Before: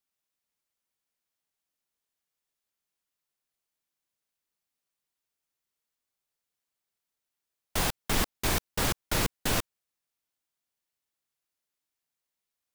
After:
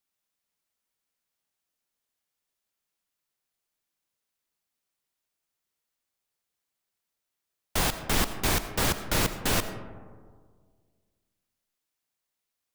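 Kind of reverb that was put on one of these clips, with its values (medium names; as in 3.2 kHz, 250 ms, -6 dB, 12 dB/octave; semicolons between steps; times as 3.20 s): algorithmic reverb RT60 1.8 s, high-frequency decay 0.3×, pre-delay 45 ms, DRR 10.5 dB; trim +2 dB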